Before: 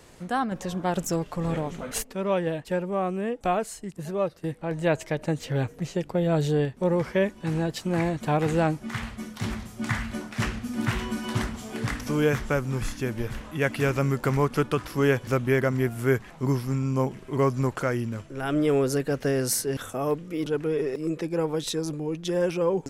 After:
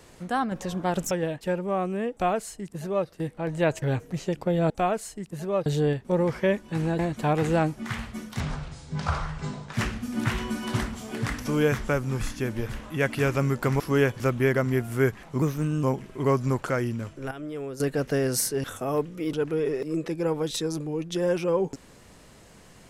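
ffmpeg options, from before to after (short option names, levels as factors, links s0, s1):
-filter_complex "[0:a]asplit=13[s0][s1][s2][s3][s4][s5][s6][s7][s8][s9][s10][s11][s12];[s0]atrim=end=1.112[s13];[s1]atrim=start=2.348:end=5.062[s14];[s2]atrim=start=5.498:end=6.382[s15];[s3]atrim=start=3.358:end=4.322[s16];[s4]atrim=start=6.378:end=7.712[s17];[s5]atrim=start=8.028:end=9.444[s18];[s6]atrim=start=9.44:end=10.35,asetpts=PTS-STARTPTS,asetrate=29988,aresample=44100,atrim=end_sample=59016,asetpts=PTS-STARTPTS[s19];[s7]atrim=start=10.346:end=14.412[s20];[s8]atrim=start=14.868:end=16.494[s21];[s9]atrim=start=16.49:end=16.96,asetpts=PTS-STARTPTS,asetrate=50274,aresample=44100[s22];[s10]atrim=start=16.956:end=18.442[s23];[s11]atrim=start=18.438:end=18.932,asetpts=PTS-STARTPTS,volume=0.251[s24];[s12]atrim=start=18.928[s25];[s13][s14]acrossfade=d=0.004:c1=hsin:c2=hsin[s26];[s26][s15]acrossfade=d=0.004:c1=hsin:c2=hsin[s27];[s27][s16]acrossfade=d=0.004:c1=hsin:c2=hsin[s28];[s28][s17]acrossfade=d=0.004:c1=hsin:c2=hsin[s29];[s29][s18]acrossfade=d=0.004:c1=hsin:c2=hsin[s30];[s30][s19]acrossfade=d=0.004:c1=hsin:c2=hsin[s31];[s31][s20]acrossfade=d=0.004:c1=hsin:c2=hsin[s32];[s32][s21]acrossfade=d=0.004:c1=hsin:c2=hsin[s33];[s33][s22]acrossfade=d=0.004:c1=hsin:c2=hsin[s34];[s34][s23]acrossfade=d=0.004:c1=hsin:c2=hsin[s35];[s35][s24]acrossfade=d=0.004:c1=hsin:c2=hsin[s36];[s36][s25]acrossfade=d=0.004:c1=hsin:c2=hsin"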